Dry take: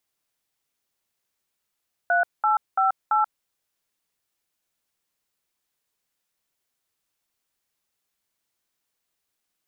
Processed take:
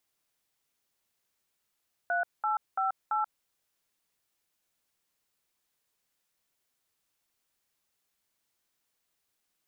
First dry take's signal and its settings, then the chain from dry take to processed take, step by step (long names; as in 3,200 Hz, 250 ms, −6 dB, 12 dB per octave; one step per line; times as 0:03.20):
touch tones "3858", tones 133 ms, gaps 204 ms, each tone −20 dBFS
brickwall limiter −22.5 dBFS